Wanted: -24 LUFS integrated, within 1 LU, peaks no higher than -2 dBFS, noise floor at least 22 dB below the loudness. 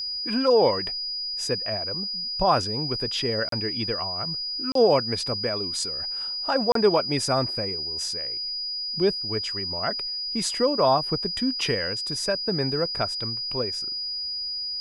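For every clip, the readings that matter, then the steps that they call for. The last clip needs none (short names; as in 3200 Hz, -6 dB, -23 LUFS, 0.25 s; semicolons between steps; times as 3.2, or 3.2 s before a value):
dropouts 3; longest dropout 33 ms; steady tone 4900 Hz; tone level -28 dBFS; loudness -24.5 LUFS; peak -7.5 dBFS; loudness target -24.0 LUFS
-> interpolate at 3.49/4.72/6.72, 33 ms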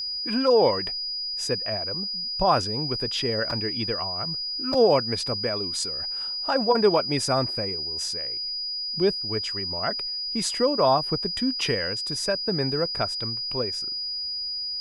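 dropouts 0; steady tone 4900 Hz; tone level -28 dBFS
-> notch 4900 Hz, Q 30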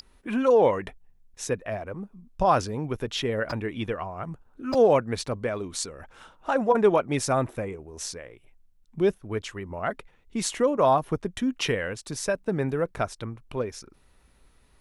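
steady tone none; loudness -26.5 LUFS; peak -8.5 dBFS; loudness target -24.0 LUFS
-> gain +2.5 dB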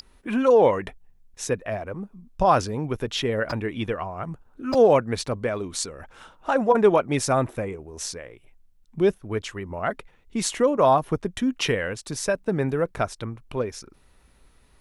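loudness -24.0 LUFS; peak -6.0 dBFS; noise floor -58 dBFS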